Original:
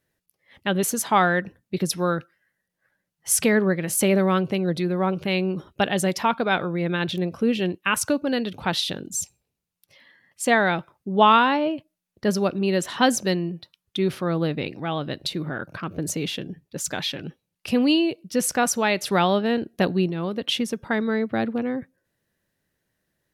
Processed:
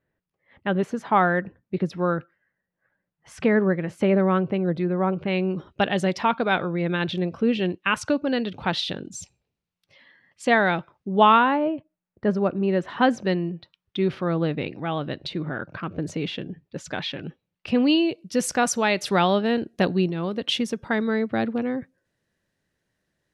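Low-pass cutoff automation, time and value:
5.19 s 1.9 kHz
5.67 s 4.3 kHz
11.16 s 4.3 kHz
11.58 s 1.7 kHz
12.67 s 1.7 kHz
13.53 s 3.3 kHz
17.74 s 3.3 kHz
18.27 s 8.1 kHz

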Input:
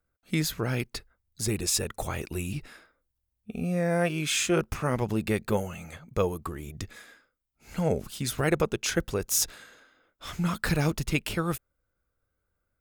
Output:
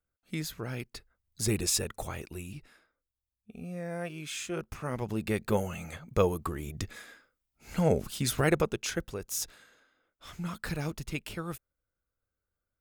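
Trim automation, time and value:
0.96 s -8 dB
1.52 s +0.5 dB
2.66 s -11 dB
4.50 s -11 dB
5.76 s +1 dB
8.38 s +1 dB
9.16 s -8.5 dB

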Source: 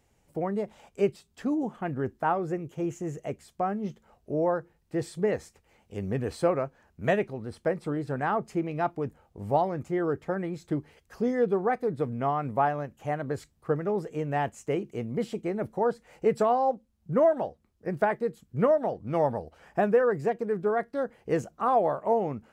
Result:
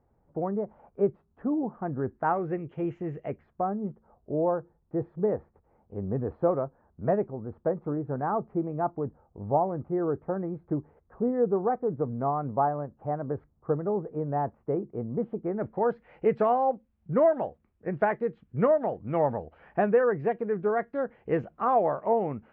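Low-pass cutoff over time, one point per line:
low-pass 24 dB/octave
1.92 s 1.3 kHz
2.53 s 2.6 kHz
3.20 s 2.6 kHz
3.70 s 1.2 kHz
15.37 s 1.2 kHz
15.84 s 2.6 kHz

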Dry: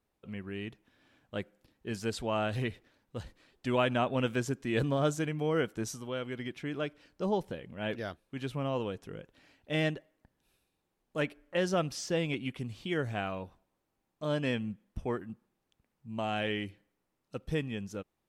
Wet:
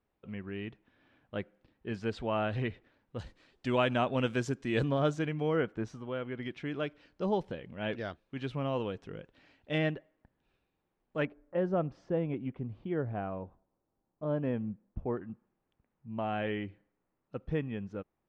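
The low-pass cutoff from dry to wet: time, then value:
2.9 kHz
from 3.19 s 6.6 kHz
from 4.84 s 3.9 kHz
from 5.56 s 2.2 kHz
from 6.43 s 4.3 kHz
from 9.78 s 2.6 kHz
from 11.25 s 1 kHz
from 15.17 s 1.9 kHz

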